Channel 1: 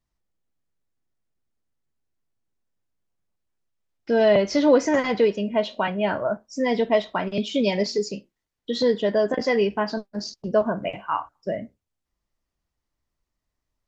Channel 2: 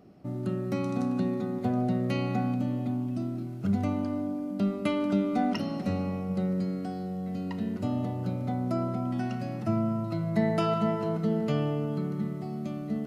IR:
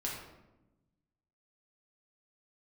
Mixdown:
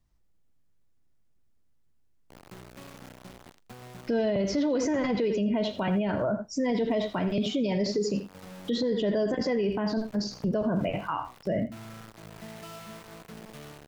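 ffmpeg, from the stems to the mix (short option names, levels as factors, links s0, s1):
-filter_complex "[0:a]lowshelf=f=250:g=8.5,volume=1.33,asplit=3[s0][s1][s2];[s1]volume=0.188[s3];[1:a]bandreject=f=50:t=h:w=6,bandreject=f=100:t=h:w=6,bandreject=f=150:t=h:w=6,bandreject=f=200:t=h:w=6,bandreject=f=250:t=h:w=6,bandreject=f=300:t=h:w=6,adynamicequalizer=threshold=0.00708:dfrequency=350:dqfactor=0.86:tfrequency=350:tqfactor=0.86:attack=5:release=100:ratio=0.375:range=3:mode=cutabove:tftype=bell,acrusher=bits=4:mix=0:aa=0.000001,adelay=2050,volume=0.168,asplit=2[s4][s5];[s5]volume=0.106[s6];[s2]apad=whole_len=666676[s7];[s4][s7]sidechaincompress=threshold=0.0447:ratio=8:attack=5.4:release=255[s8];[s3][s6]amix=inputs=2:normalize=0,aecho=0:1:82:1[s9];[s0][s8][s9]amix=inputs=3:normalize=0,acrossover=split=560|2000[s10][s11][s12];[s10]acompressor=threshold=0.158:ratio=4[s13];[s11]acompressor=threshold=0.0398:ratio=4[s14];[s12]acompressor=threshold=0.0158:ratio=4[s15];[s13][s14][s15]amix=inputs=3:normalize=0,alimiter=limit=0.1:level=0:latency=1:release=31"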